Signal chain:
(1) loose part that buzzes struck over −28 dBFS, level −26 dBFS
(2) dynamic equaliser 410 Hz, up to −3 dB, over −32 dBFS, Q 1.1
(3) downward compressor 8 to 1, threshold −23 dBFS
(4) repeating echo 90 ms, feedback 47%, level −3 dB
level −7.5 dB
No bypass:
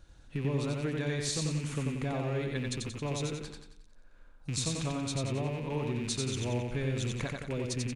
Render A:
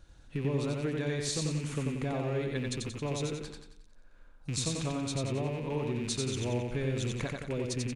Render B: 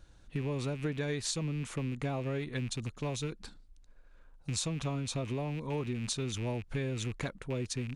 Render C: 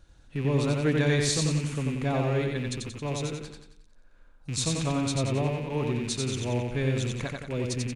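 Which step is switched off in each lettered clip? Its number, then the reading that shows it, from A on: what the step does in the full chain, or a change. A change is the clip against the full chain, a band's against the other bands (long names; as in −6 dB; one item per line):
2, 500 Hz band +2.0 dB
4, echo-to-direct ratio −2.0 dB to none audible
3, average gain reduction 3.5 dB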